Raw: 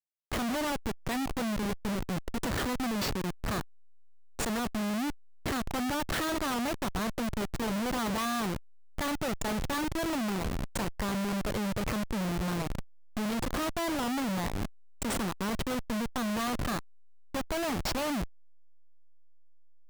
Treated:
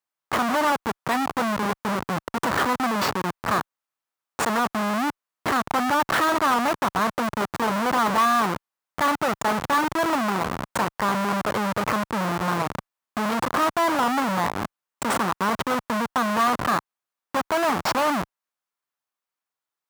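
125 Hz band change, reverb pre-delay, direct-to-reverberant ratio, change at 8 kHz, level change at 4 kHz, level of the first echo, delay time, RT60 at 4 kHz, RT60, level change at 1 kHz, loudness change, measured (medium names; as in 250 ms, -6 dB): +2.5 dB, no reverb, no reverb, +4.5 dB, +6.0 dB, no echo, no echo, no reverb, no reverb, +14.0 dB, +9.0 dB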